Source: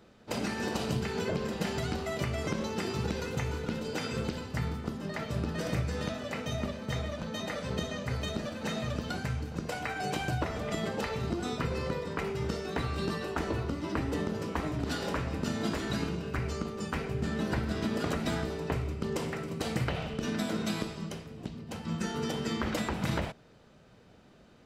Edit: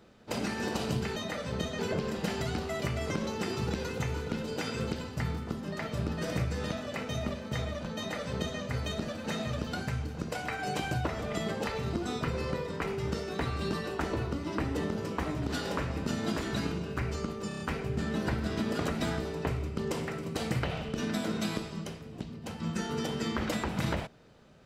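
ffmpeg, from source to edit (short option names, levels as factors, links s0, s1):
-filter_complex "[0:a]asplit=7[s0][s1][s2][s3][s4][s5][s6];[s0]atrim=end=1.162[s7];[s1]atrim=start=7.338:end=7.972[s8];[s2]atrim=start=1.158:end=16.882[s9];[s3]atrim=start=16.848:end=16.882[s10];[s4]atrim=start=16.848:end=16.882[s11];[s5]atrim=start=16.848:end=16.882[s12];[s6]atrim=start=16.848[s13];[s7][s8]acrossfade=d=0.004:c1=hsin:c2=hsin[s14];[s14][s9]acrossfade=d=0.004:c1=hsin:c2=hsin[s15];[s15][s10]acrossfade=d=0.004:c1=hsin:c2=hsin[s16];[s16][s11]acrossfade=d=0.004:c1=hsin:c2=hsin[s17];[s17][s12]acrossfade=d=0.004:c1=hsin:c2=hsin[s18];[s18][s13]acrossfade=d=0.004:c1=hsin:c2=hsin"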